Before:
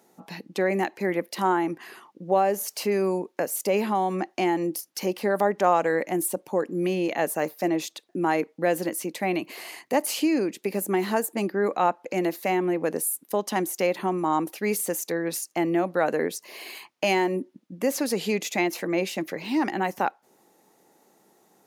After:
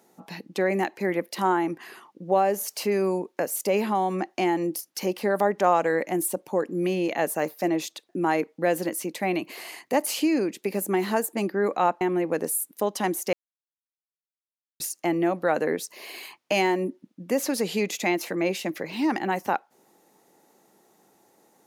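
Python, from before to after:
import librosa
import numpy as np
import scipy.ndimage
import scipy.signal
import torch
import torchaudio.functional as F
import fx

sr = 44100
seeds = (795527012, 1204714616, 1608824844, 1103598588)

y = fx.edit(x, sr, fx.cut(start_s=12.01, length_s=0.52),
    fx.silence(start_s=13.85, length_s=1.47), tone=tone)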